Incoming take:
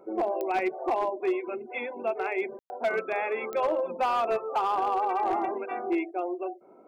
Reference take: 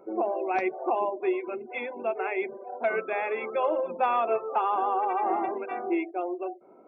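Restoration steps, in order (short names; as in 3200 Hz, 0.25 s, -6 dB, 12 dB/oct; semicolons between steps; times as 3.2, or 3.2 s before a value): clip repair -20.5 dBFS; de-click; room tone fill 2.59–2.7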